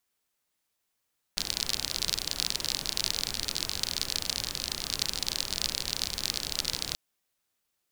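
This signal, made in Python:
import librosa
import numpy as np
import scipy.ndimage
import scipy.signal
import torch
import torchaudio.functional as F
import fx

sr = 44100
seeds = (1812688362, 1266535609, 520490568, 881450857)

y = fx.rain(sr, seeds[0], length_s=5.58, drops_per_s=43.0, hz=4400.0, bed_db=-8.0)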